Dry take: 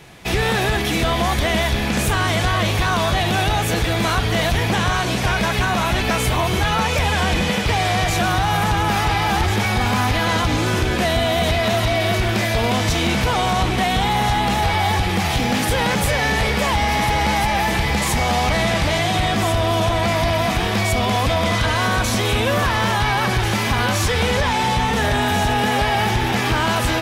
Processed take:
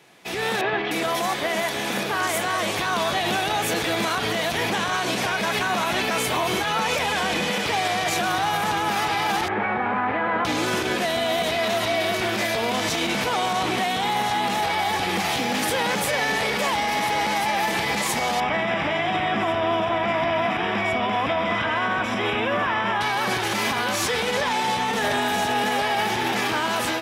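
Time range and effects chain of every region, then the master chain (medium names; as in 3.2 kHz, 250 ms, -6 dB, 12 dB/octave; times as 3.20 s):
0.61–2.76 s: high-pass 110 Hz + three bands offset in time mids, lows, highs 30/300 ms, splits 200/3300 Hz
9.48–10.45 s: low-pass 2 kHz 24 dB/octave + bass shelf 120 Hz -8 dB
18.40–23.01 s: Savitzky-Golay filter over 25 samples + peaking EQ 490 Hz -5 dB 0.34 oct
whole clip: level rider; high-pass 240 Hz 12 dB/octave; peak limiter -6 dBFS; trim -8.5 dB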